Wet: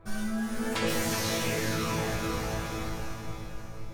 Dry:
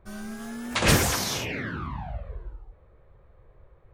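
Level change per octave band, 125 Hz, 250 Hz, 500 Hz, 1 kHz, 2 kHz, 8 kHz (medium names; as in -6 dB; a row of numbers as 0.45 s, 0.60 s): -3.5 dB, +0.5 dB, +0.5 dB, -1.5 dB, -3.5 dB, -4.5 dB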